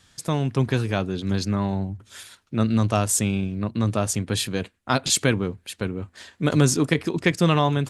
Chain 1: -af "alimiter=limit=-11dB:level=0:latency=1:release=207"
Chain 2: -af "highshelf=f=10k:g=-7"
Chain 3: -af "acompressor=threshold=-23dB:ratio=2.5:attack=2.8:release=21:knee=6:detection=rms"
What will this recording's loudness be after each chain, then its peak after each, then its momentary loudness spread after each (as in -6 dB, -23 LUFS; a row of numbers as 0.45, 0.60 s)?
-25.5, -24.0, -27.5 LUFS; -11.0, -5.0, -11.0 dBFS; 9, 11, 8 LU